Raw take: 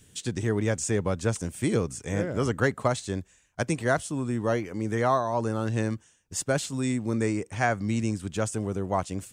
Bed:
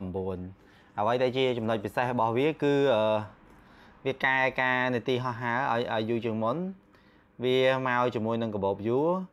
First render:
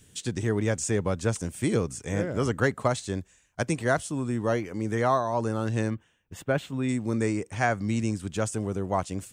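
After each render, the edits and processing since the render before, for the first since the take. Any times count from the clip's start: 5.90–6.89 s: high-order bell 7.1 kHz -16 dB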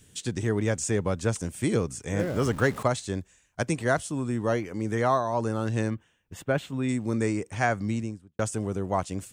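2.19–2.83 s: jump at every zero crossing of -36.5 dBFS; 7.78–8.39 s: studio fade out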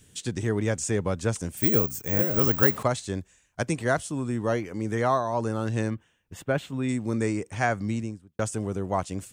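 1.57–2.77 s: careless resampling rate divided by 2×, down none, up zero stuff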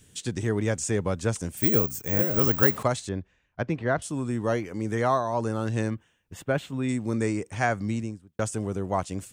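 3.09–4.02 s: distance through air 280 m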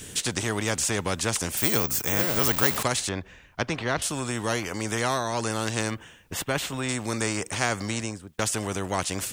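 spectrum-flattening compressor 2:1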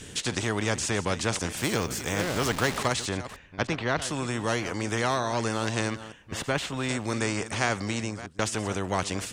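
chunks repeated in reverse 306 ms, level -13.5 dB; distance through air 54 m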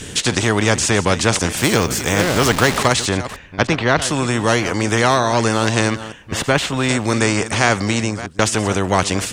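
trim +11.5 dB; peak limiter -1 dBFS, peak gain reduction 2 dB

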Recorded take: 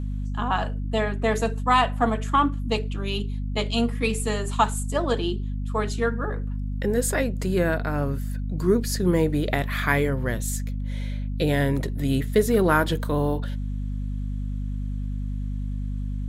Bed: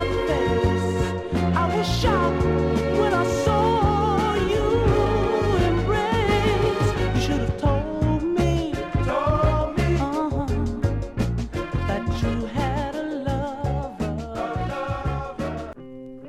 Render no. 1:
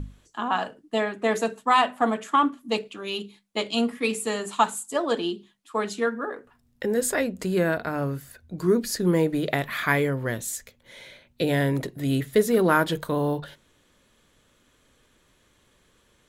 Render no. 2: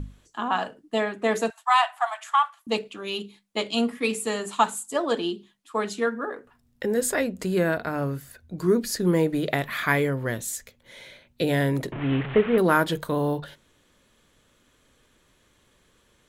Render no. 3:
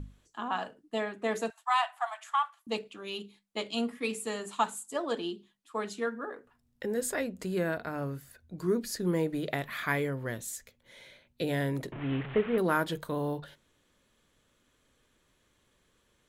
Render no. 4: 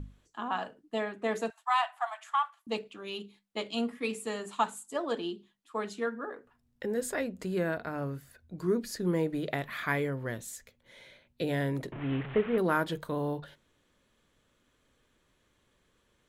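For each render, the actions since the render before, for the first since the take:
hum notches 50/100/150/200/250 Hz
1.50–2.67 s: steep high-pass 690 Hz 72 dB/octave; 11.92–12.58 s: one-bit delta coder 16 kbps, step -26.5 dBFS
trim -7.5 dB
treble shelf 4.9 kHz -5 dB

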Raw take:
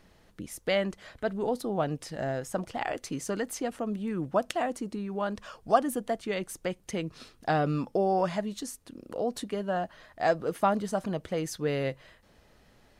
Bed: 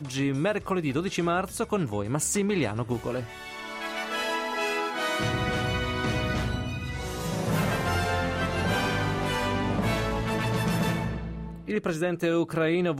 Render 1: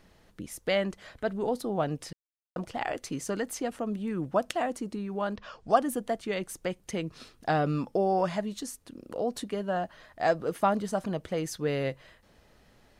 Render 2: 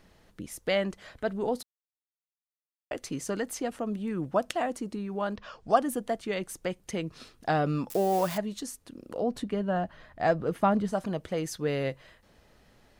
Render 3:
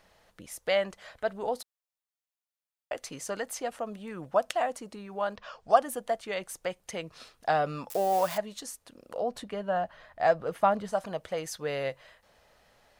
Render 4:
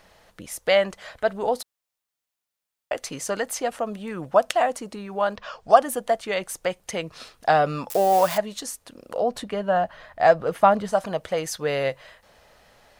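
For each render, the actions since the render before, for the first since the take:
2.13–2.56 s: mute; 5.35–5.75 s: low-pass 4.2 kHz -> 9.6 kHz 24 dB/octave
1.63–2.91 s: mute; 7.90–8.38 s: zero-crossing glitches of -28.5 dBFS; 9.22–10.92 s: tone controls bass +7 dB, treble -7 dB
resonant low shelf 440 Hz -8 dB, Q 1.5
trim +7.5 dB; peak limiter -1 dBFS, peak gain reduction 1.5 dB

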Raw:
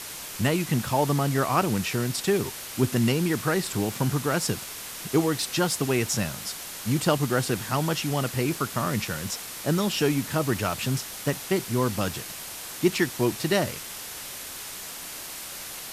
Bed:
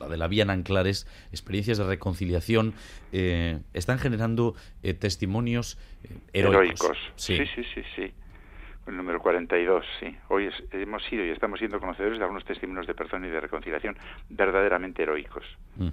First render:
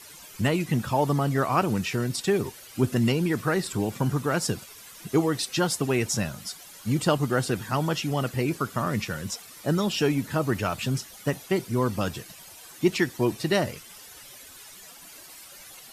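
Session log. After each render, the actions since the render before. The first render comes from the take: noise reduction 13 dB, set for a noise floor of -38 dBFS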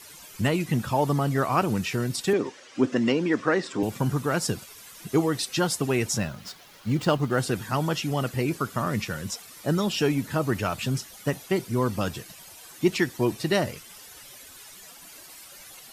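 2.33–3.83 s: cabinet simulation 230–6500 Hz, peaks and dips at 280 Hz +8 dB, 530 Hz +6 dB, 1.1 kHz +3 dB, 1.8 kHz +4 dB, 4.3 kHz -4 dB; 6.18–7.38 s: median filter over 5 samples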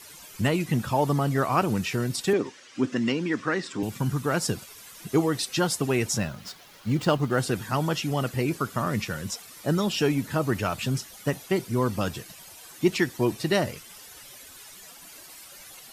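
2.42–4.25 s: peaking EQ 580 Hz -7 dB 1.6 oct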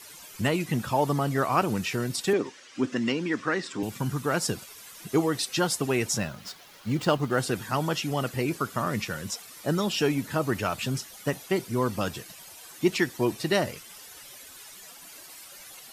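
bass shelf 190 Hz -5 dB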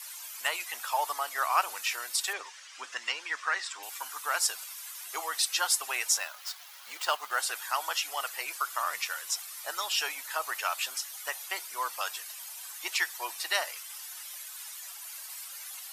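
high-pass 810 Hz 24 dB/octave; treble shelf 7.8 kHz +7 dB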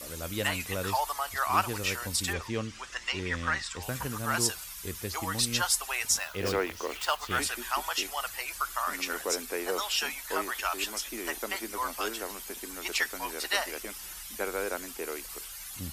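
add bed -10.5 dB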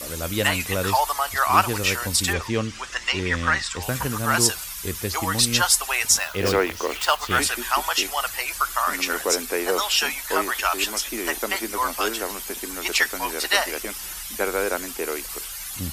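trim +8.5 dB

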